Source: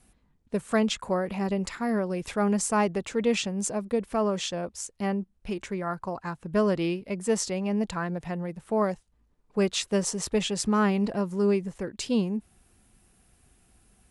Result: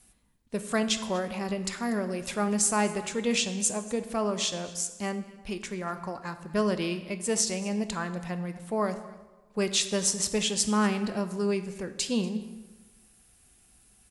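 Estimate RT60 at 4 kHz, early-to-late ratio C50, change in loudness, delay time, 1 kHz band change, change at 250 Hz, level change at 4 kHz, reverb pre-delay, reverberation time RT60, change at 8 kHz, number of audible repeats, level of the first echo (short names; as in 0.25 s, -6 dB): 0.85 s, 11.5 dB, -1.0 dB, 0.24 s, -2.0 dB, -2.5 dB, +3.5 dB, 3 ms, 1.2 s, +5.5 dB, 1, -20.5 dB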